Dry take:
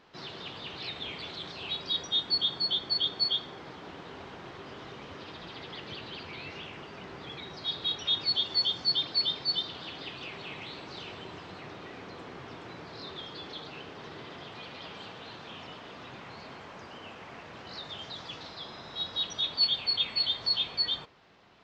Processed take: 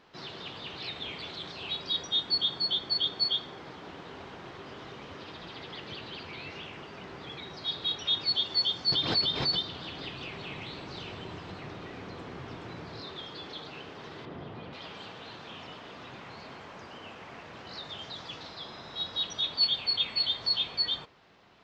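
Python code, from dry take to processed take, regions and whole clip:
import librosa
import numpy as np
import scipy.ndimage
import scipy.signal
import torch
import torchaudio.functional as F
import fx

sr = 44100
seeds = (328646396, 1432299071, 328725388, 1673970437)

y = fx.chain(x, sr, fx.low_shelf(hz=190.0, db=8.0),
    fx.pre_swell(db_per_s=63.0), at=(8.92, 13.01))
y = fx.chain(y, sr, fx.lowpass(hz=1300.0, slope=6),
    fx.low_shelf(hz=400.0, db=8.5), at=(14.25, 14.73))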